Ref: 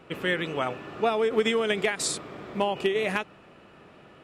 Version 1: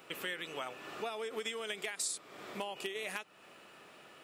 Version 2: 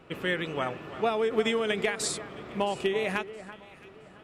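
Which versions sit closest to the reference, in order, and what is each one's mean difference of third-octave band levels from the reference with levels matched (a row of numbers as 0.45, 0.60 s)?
2, 1; 2.0, 8.0 dB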